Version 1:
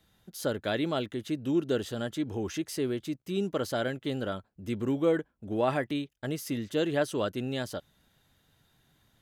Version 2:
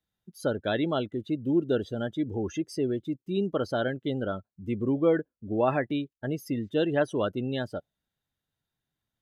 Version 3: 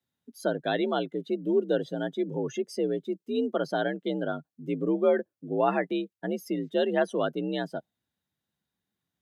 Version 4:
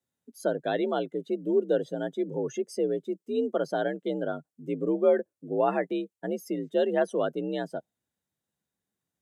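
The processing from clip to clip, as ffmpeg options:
-af "afftdn=nr=22:nf=-38,volume=1.33"
-af "afreqshift=56"
-af "equalizer=f=500:t=o:w=1:g=5,equalizer=f=4000:t=o:w=1:g=-4,equalizer=f=8000:t=o:w=1:g=7,volume=0.708"

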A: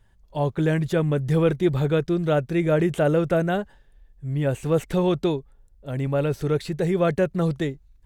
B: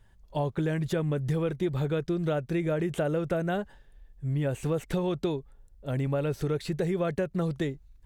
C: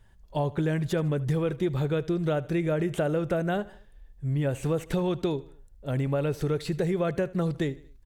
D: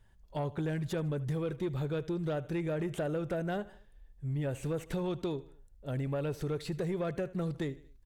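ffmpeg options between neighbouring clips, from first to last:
-af "acompressor=threshold=0.0562:ratio=6"
-af "aecho=1:1:77|154|231:0.1|0.046|0.0212,volume=1.19"
-af "asoftclip=type=tanh:threshold=0.1,volume=0.531"

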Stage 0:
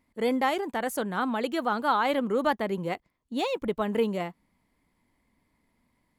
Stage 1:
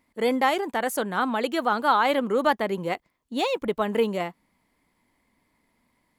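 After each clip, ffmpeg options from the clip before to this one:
-af "lowshelf=f=220:g=-7.5,volume=1.68"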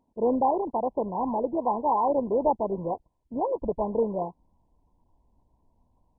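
-af "asubboost=boost=7:cutoff=85" -ar 22050 -c:a mp2 -b:a 8k

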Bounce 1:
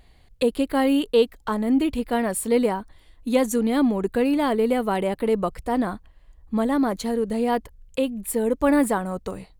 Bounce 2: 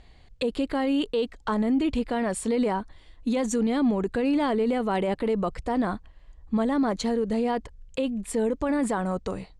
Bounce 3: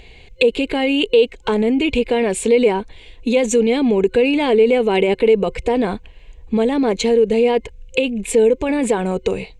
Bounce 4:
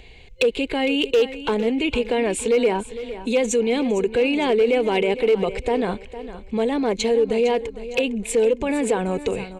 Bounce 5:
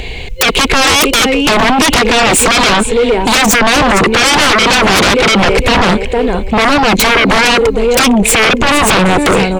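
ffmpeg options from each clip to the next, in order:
-af "lowpass=f=7800:w=0.5412,lowpass=f=7800:w=1.3066,alimiter=limit=0.112:level=0:latency=1:release=32,volume=1.19"
-filter_complex "[0:a]superequalizer=7b=2.82:10b=0.501:12b=3.98:13b=2:15b=1.58,asplit=2[s0][s1];[s1]acompressor=threshold=0.0398:ratio=6,volume=0.891[s2];[s0][s2]amix=inputs=2:normalize=0,volume=1.41"
-filter_complex "[0:a]acrossover=split=420|1300[s0][s1][s2];[s0]alimiter=limit=0.133:level=0:latency=1:release=86[s3];[s3][s1][s2]amix=inputs=3:normalize=0,volume=2.82,asoftclip=hard,volume=0.355,aecho=1:1:457|914|1371:0.211|0.0697|0.023,volume=0.708"
-af "aeval=exprs='0.316*sin(PI/2*5.62*val(0)/0.316)':c=same,acrusher=bits=9:mix=0:aa=0.000001,volume=1.68"

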